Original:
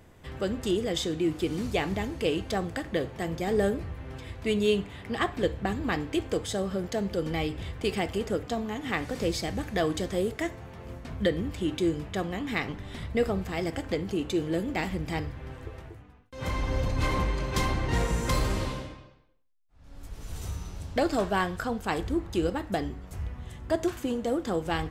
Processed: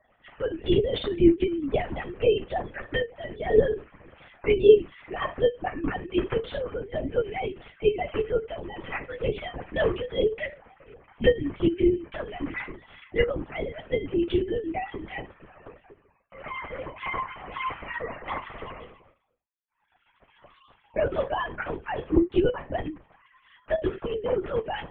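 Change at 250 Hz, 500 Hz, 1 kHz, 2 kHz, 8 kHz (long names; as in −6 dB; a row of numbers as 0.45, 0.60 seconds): +1.0 dB, +5.0 dB, −0.5 dB, +0.5 dB, below −35 dB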